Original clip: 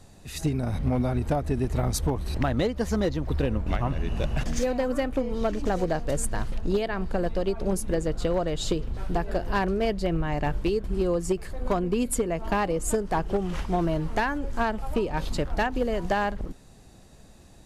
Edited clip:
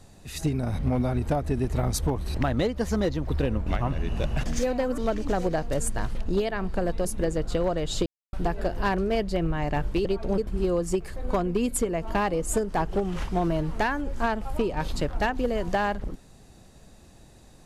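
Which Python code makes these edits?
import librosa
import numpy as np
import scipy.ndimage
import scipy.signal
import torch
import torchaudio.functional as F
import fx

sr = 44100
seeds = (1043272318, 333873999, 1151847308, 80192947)

y = fx.edit(x, sr, fx.cut(start_s=4.98, length_s=0.37),
    fx.move(start_s=7.42, length_s=0.33, to_s=10.75),
    fx.silence(start_s=8.76, length_s=0.27), tone=tone)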